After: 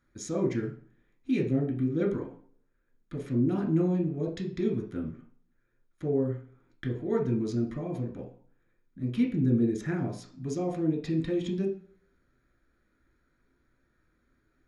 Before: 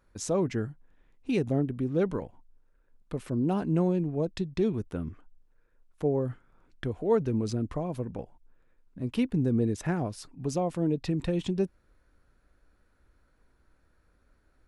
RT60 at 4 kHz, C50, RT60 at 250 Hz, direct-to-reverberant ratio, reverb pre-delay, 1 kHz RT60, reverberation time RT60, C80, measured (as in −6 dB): 0.40 s, 9.0 dB, 0.50 s, −0.5 dB, 3 ms, 0.50 s, 0.45 s, 13.5 dB